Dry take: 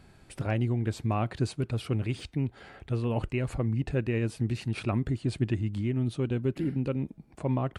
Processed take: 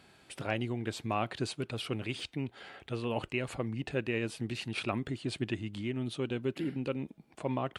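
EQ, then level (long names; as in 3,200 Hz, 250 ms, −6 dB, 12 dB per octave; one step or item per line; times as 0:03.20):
high-pass filter 370 Hz 6 dB per octave
parametric band 3,200 Hz +5.5 dB 0.77 octaves
0.0 dB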